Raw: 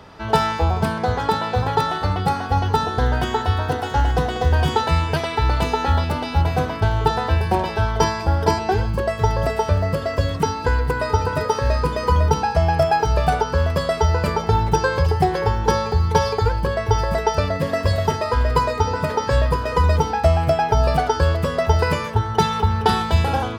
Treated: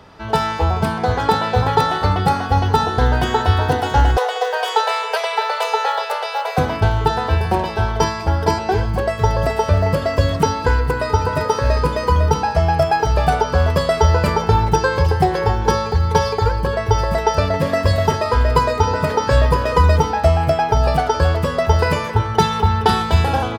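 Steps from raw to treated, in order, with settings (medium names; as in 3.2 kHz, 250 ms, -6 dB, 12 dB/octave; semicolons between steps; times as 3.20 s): speakerphone echo 270 ms, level -12 dB; level rider; 4.17–6.58 s: steep high-pass 430 Hz 96 dB/octave; trim -1 dB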